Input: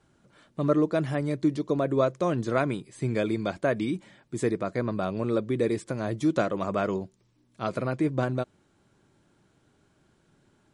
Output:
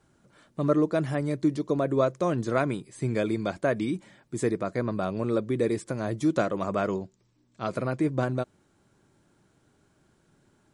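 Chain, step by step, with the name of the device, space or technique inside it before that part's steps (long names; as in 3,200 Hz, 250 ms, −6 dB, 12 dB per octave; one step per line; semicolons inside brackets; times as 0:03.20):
0:06.95–0:07.69: elliptic low-pass filter 8,000 Hz
exciter from parts (in parallel at −8.5 dB: high-pass filter 2,100 Hz 12 dB per octave + soft clipping −30 dBFS, distortion −17 dB + high-pass filter 3,300 Hz 12 dB per octave)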